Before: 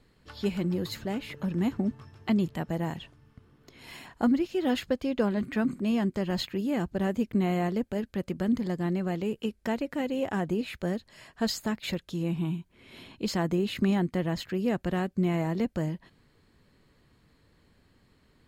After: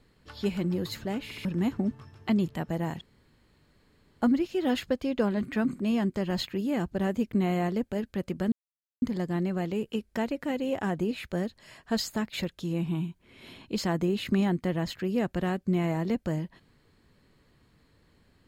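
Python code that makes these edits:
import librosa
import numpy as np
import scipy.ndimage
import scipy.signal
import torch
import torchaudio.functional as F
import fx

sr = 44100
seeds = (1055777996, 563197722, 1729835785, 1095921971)

y = fx.edit(x, sr, fx.stutter_over(start_s=1.24, slice_s=0.07, count=3),
    fx.room_tone_fill(start_s=3.01, length_s=1.21),
    fx.insert_silence(at_s=8.52, length_s=0.5), tone=tone)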